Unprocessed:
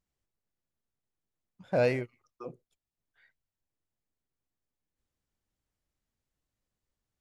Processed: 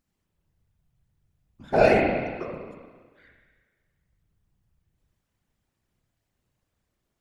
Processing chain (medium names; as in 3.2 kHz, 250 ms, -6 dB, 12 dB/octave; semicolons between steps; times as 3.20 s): 1.68–2.44 s: comb 2.8 ms, depth 68%; spring tank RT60 1.5 s, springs 34 ms, chirp 70 ms, DRR -2 dB; whisper effect; trim +5.5 dB